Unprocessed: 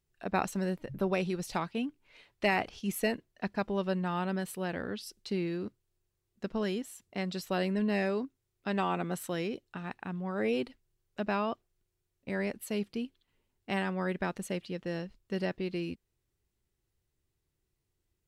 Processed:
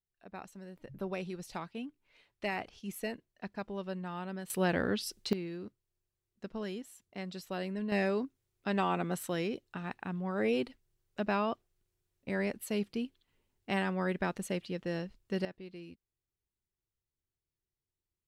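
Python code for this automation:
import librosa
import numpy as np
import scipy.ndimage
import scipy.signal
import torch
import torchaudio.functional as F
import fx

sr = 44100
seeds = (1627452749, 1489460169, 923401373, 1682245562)

y = fx.gain(x, sr, db=fx.steps((0.0, -16.0), (0.76, -7.5), (4.5, 5.5), (5.33, -6.5), (7.92, 0.0), (15.45, -12.5)))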